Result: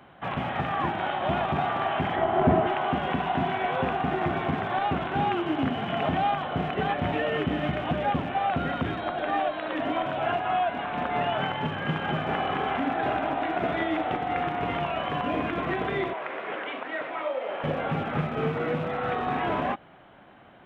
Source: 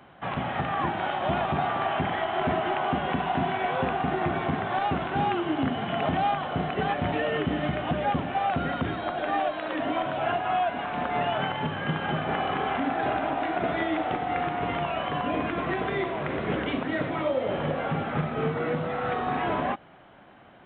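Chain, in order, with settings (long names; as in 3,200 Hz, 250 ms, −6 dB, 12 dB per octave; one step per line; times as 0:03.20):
loose part that buzzes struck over −36 dBFS, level −36 dBFS
0:02.16–0:02.67: tilt shelving filter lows +8 dB, about 1,300 Hz
0:16.13–0:17.64: band-pass filter 590–2,900 Hz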